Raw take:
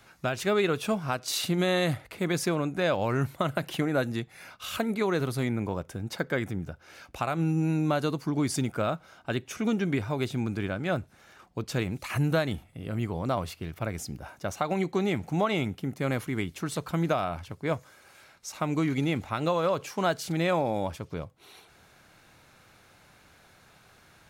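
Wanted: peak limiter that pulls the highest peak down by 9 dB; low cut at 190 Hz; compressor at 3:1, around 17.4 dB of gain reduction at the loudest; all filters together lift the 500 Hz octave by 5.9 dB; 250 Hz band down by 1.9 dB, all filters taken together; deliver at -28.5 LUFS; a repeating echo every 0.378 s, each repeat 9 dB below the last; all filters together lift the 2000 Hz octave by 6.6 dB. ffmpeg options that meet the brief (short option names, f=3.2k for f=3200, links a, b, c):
-af "highpass=190,equalizer=f=250:t=o:g=-4,equalizer=f=500:t=o:g=8,equalizer=f=2k:t=o:g=8,acompressor=threshold=-41dB:ratio=3,alimiter=level_in=6dB:limit=-24dB:level=0:latency=1,volume=-6dB,aecho=1:1:378|756|1134|1512:0.355|0.124|0.0435|0.0152,volume=14dB"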